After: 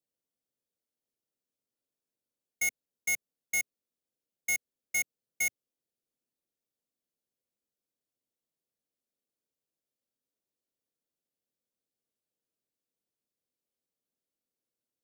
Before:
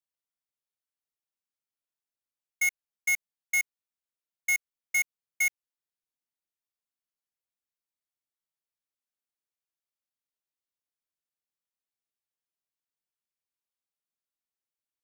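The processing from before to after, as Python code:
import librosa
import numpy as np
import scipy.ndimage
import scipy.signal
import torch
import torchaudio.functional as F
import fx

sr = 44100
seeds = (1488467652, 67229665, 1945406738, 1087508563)

y = fx.graphic_eq(x, sr, hz=(125, 250, 500, 1000, 2000), db=(5, 9, 10, -6, -5))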